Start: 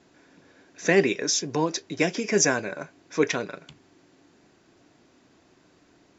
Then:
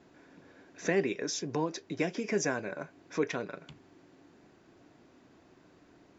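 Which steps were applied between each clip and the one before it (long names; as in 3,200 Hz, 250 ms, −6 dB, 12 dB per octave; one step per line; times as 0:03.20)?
high-shelf EQ 3,100 Hz −9 dB
downward compressor 1.5 to 1, threshold −39 dBFS, peak gain reduction 9 dB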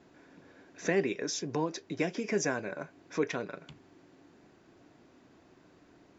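no processing that can be heard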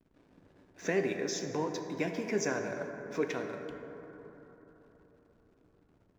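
slack as between gear wheels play −49.5 dBFS
dense smooth reverb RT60 4 s, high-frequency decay 0.3×, DRR 4 dB
level −2.5 dB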